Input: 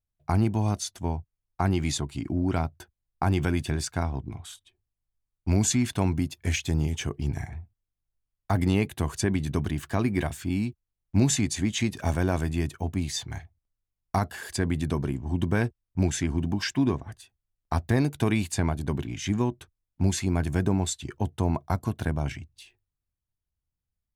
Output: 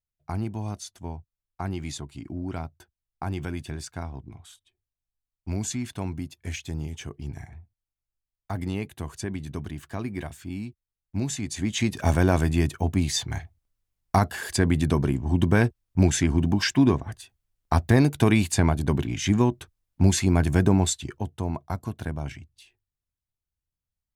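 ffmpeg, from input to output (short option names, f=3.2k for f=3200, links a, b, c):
-af "volume=5dB,afade=t=in:st=11.4:d=0.74:silence=0.266073,afade=t=out:st=20.86:d=0.4:silence=0.375837"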